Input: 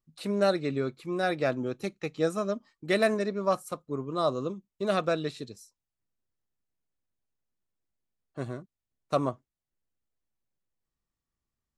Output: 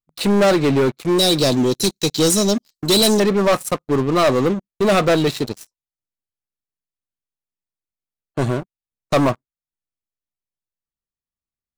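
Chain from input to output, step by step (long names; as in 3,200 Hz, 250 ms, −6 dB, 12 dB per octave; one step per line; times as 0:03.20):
0:01.18–0:03.20: drawn EQ curve 390 Hz 0 dB, 1,600 Hz −21 dB, 4,100 Hz +14 dB
leveller curve on the samples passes 5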